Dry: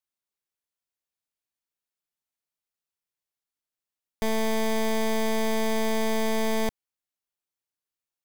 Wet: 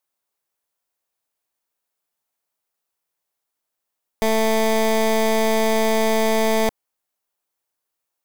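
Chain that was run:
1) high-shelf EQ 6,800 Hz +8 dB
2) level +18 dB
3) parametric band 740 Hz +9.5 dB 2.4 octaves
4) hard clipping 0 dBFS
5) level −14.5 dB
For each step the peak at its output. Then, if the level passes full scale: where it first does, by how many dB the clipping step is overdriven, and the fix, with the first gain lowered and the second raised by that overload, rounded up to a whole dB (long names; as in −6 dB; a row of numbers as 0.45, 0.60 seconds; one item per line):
−15.5, +2.5, +5.0, 0.0, −14.5 dBFS
step 2, 5.0 dB
step 2 +13 dB, step 5 −9.5 dB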